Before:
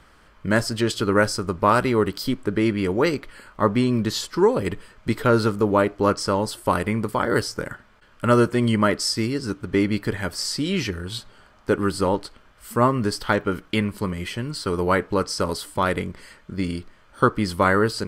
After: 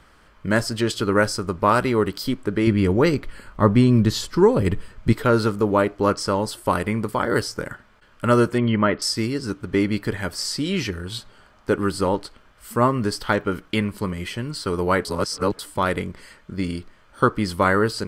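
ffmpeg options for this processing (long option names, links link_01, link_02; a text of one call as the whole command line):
ffmpeg -i in.wav -filter_complex "[0:a]asettb=1/sr,asplit=3[link_01][link_02][link_03];[link_01]atrim=end=2.674[link_04];[link_02]atrim=start=2.67:end=5.13,asetpts=PTS-STARTPTS,afade=type=in:duration=0.004:curve=qsin,afade=type=out:start_time=2.456:duration=0.004:curve=qsin,lowshelf=frequency=190:gain=11.5[link_05];[link_03]atrim=start=5.126[link_06];[link_04][link_05]acrossfade=duration=0.004:curve1=hsin:curve2=qsin[link_07];[link_07][link_06]acrossfade=duration=0.004:curve1=qsin:curve2=hsin,asettb=1/sr,asplit=3[link_08][link_09][link_10];[link_08]atrim=end=8.584[link_11];[link_09]atrim=start=8.58:end=9.02,asetpts=PTS-STARTPTS,afade=type=in:duration=0.004:curve=qsin,afade=type=out:start_time=0.436:duration=0.004:curve=qsin,lowpass=frequency=3300:width=0.5412,lowpass=frequency=3300:width=1.3066[link_12];[link_10]atrim=start=9.016[link_13];[link_11][link_12]acrossfade=duration=0.004:curve1=hsin:curve2=qsin[link_14];[link_14][link_13]acrossfade=duration=0.004:curve1=qsin:curve2=hsin,asplit=3[link_15][link_16][link_17];[link_15]atrim=end=15.052[link_18];[link_16]atrim=start=15.048:end=15.592,asetpts=PTS-STARTPTS,areverse[link_19];[link_17]atrim=start=15.588[link_20];[link_18][link_19]acrossfade=duration=0.004:curve1=hsin:curve2=hsin[link_21];[link_21][link_20]acrossfade=duration=0.004:curve1=hsin:curve2=hsin" out.wav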